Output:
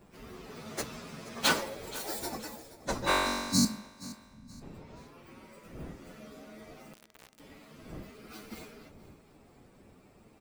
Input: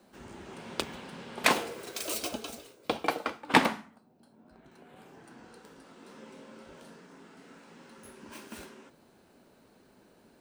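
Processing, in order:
partials spread apart or drawn together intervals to 123%
wind on the microphone 300 Hz −56 dBFS
0:03.13–0:04.62: time-frequency box erased 290–3,900 Hz
0:03.04–0:03.65: flutter between parallel walls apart 3.6 metres, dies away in 1.4 s
0:06.93–0:07.40: bit-depth reduction 8 bits, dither none
on a send: repeating echo 475 ms, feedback 32%, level −18.5 dB
on the sum: level +3.5 dB

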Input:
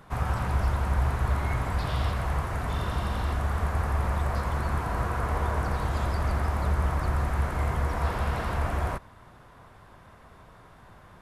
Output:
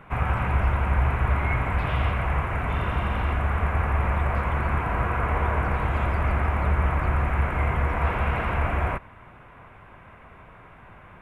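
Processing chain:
high shelf with overshoot 3,400 Hz −11.5 dB, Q 3
notch filter 1,800 Hz, Q 21
level +3 dB

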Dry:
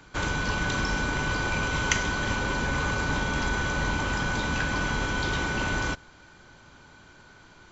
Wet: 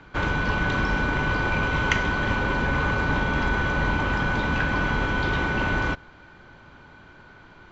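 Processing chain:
low-pass filter 2,800 Hz 12 dB per octave
level +4 dB

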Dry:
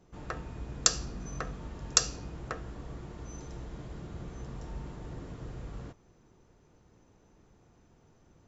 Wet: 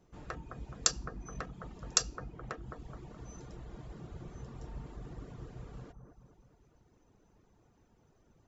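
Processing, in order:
bucket-brigade delay 212 ms, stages 2,048, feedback 51%, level −5.5 dB
reverb reduction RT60 0.73 s
level −4 dB

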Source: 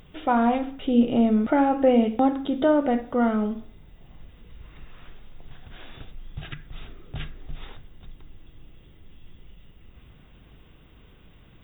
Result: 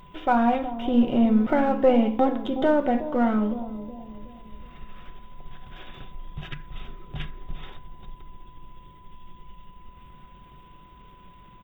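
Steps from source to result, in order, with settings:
gain on one half-wave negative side −3 dB
comb filter 5.4 ms, depth 35%
bucket-brigade delay 369 ms, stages 2,048, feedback 42%, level −12 dB
steady tone 1,000 Hz −52 dBFS
level +1 dB

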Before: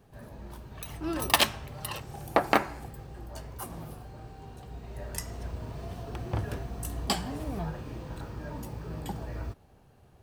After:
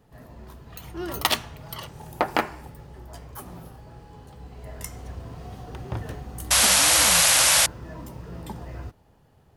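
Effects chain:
sound drawn into the spectrogram noise, 0:06.96–0:08.20, 460–11,000 Hz −18 dBFS
speed change +7%

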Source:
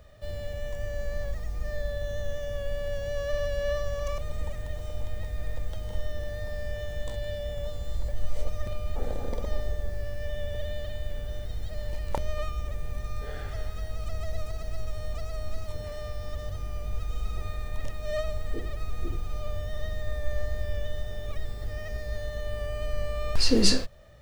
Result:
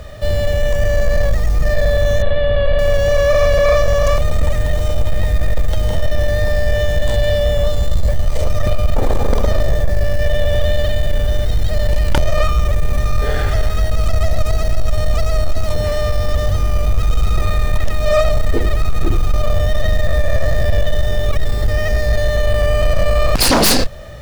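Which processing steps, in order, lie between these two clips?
in parallel at −4 dB: sine wavefolder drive 19 dB, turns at −5 dBFS
0:02.22–0:02.79: on the sum: Butterworth low-pass 4,300 Hz 72 dB per octave

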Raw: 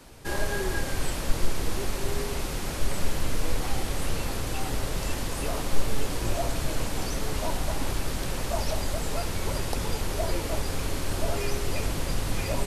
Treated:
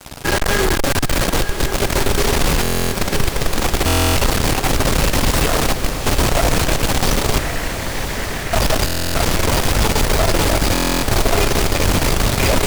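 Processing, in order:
stylus tracing distortion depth 0.17 ms
0:00.74–0:01.29: comb filter 7.1 ms, depth 40%
fuzz pedal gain 38 dB, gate −46 dBFS
0:07.38–0:08.53: resonant band-pass 1,900 Hz, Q 3.9
feedback delay with all-pass diffusion 1,029 ms, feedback 67%, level −8 dB
buffer that repeats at 0:02.62/0:03.86/0:08.85/0:10.73, samples 1,024, times 12

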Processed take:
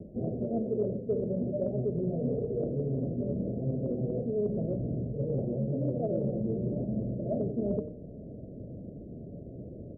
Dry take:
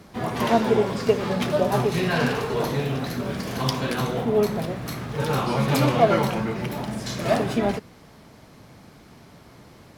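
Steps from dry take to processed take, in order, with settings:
Butterworth low-pass 620 Hz 72 dB per octave
hum removal 151.7 Hz, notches 36
reversed playback
downward compressor 5 to 1, threshold −36 dBFS, peak gain reduction 19 dB
reversed playback
slap from a distant wall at 16 metres, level −18 dB
level +6.5 dB

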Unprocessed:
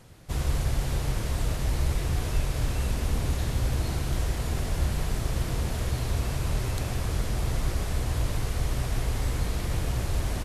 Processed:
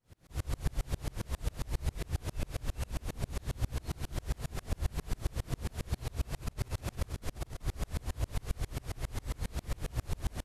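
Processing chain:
0:06.42–0:07.62: compressor whose output falls as the input rises −28 dBFS, ratio −0.5
tremolo with a ramp in dB swelling 7.4 Hz, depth 35 dB
level −1 dB

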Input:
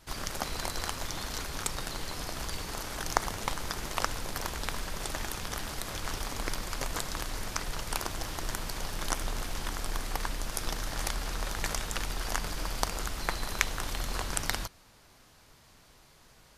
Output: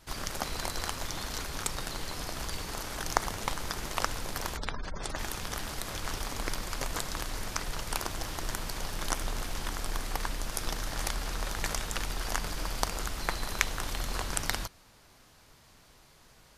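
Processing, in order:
0:04.57–0:05.19: gate on every frequency bin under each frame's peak −25 dB strong

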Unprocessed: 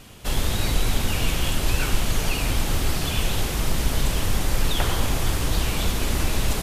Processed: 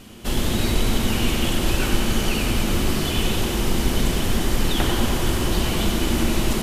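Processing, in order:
hollow resonant body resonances 230/340/3,000 Hz, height 10 dB, ringing for 60 ms
tape delay 94 ms, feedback 84%, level −6.5 dB, low-pass 5,700 Hz

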